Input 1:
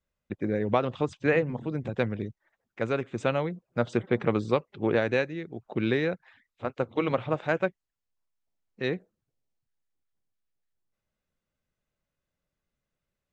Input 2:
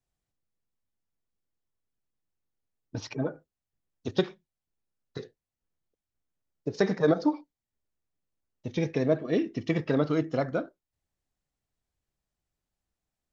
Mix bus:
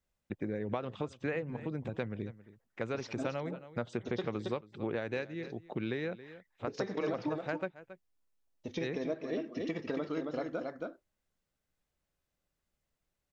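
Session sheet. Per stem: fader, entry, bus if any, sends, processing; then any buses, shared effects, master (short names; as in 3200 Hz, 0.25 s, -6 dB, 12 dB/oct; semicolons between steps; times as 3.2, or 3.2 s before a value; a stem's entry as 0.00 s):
-2.5 dB, 0.00 s, no send, echo send -21.5 dB, dry
-2.5 dB, 0.00 s, no send, echo send -6 dB, bell 130 Hz -14 dB 0.58 oct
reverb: off
echo: echo 0.273 s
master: compressor 3:1, threshold -34 dBFS, peak gain reduction 11 dB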